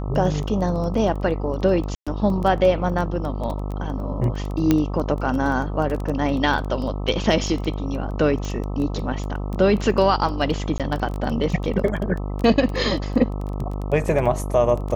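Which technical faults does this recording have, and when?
mains buzz 50 Hz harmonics 26 −27 dBFS
surface crackle 11 per second −25 dBFS
0:01.95–0:02.07: drop-out 116 ms
0:04.71: click −5 dBFS
0:08.45: click −18 dBFS
0:10.78–0:10.80: drop-out 17 ms

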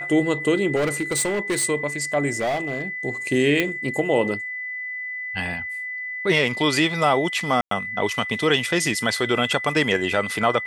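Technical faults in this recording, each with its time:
whistle 2,000 Hz −28 dBFS
0:00.75–0:01.65: clipping −18.5 dBFS
0:02.32–0:02.82: clipping −20.5 dBFS
0:03.60: click −7 dBFS
0:07.61–0:07.71: drop-out 103 ms

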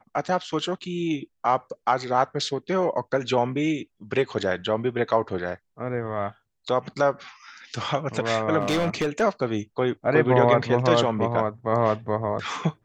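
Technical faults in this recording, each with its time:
0:08.60–0:09.22: clipping −19.5 dBFS

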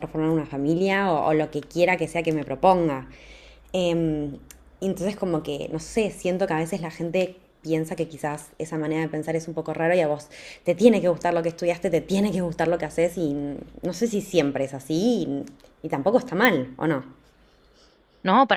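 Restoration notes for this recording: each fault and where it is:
0:16.45: click −4 dBFS

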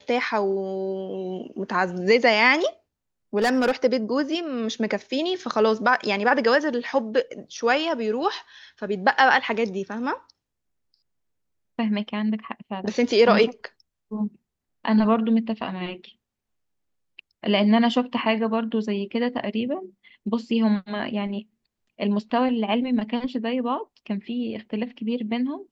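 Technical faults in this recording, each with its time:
0:03.37–0:03.72: clipping −16.5 dBFS

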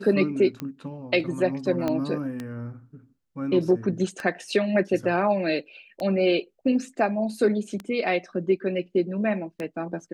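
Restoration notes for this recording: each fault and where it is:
scratch tick 33 1/3 rpm −18 dBFS
0:01.88: click −14 dBFS

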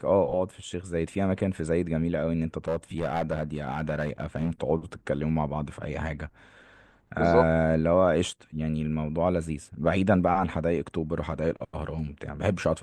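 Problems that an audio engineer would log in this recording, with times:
0:02.68–0:04.50: clipping −22 dBFS

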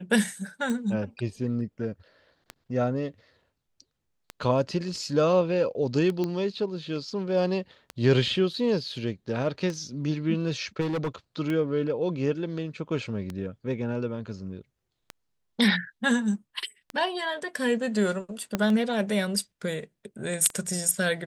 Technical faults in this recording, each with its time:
scratch tick 33 1/3 rpm −19 dBFS
0:06.24: click −17 dBFS
0:10.80–0:11.09: clipping −25 dBFS
0:18.55: click −11 dBFS

